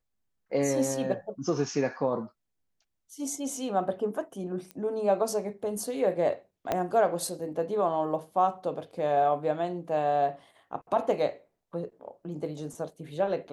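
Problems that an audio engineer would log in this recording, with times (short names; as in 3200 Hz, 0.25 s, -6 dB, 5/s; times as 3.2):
4.71 pop -25 dBFS
6.72 pop -14 dBFS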